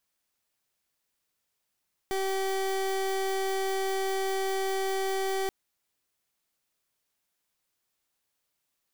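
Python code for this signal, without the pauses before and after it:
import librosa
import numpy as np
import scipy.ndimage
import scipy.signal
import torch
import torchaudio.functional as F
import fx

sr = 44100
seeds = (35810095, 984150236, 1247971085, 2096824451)

y = fx.pulse(sr, length_s=3.38, hz=385.0, level_db=-29.0, duty_pct=29)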